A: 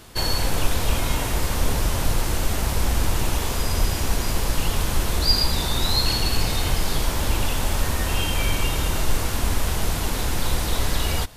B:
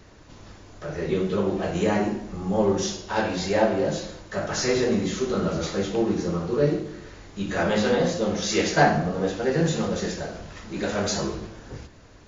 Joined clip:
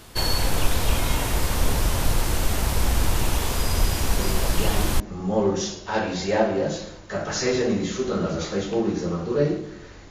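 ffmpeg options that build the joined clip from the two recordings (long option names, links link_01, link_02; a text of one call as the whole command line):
ffmpeg -i cue0.wav -i cue1.wav -filter_complex "[1:a]asplit=2[link_01][link_02];[0:a]apad=whole_dur=10.1,atrim=end=10.1,atrim=end=5.002[link_03];[link_02]atrim=start=2.218:end=7.32[link_04];[link_01]atrim=start=1.41:end=2.22,asetpts=PTS-STARTPTS,volume=-7dB,afade=type=in:duration=0.004:curve=hsin,afade=type=out:start_time=0.806:duration=0.004:curve=hsin,adelay=4190[link_05];[link_03][link_04]acrossfade=duration=0.004:curve1=hsin:curve2=hsin[link_06];[link_06][link_05]amix=inputs=2:normalize=0" out.wav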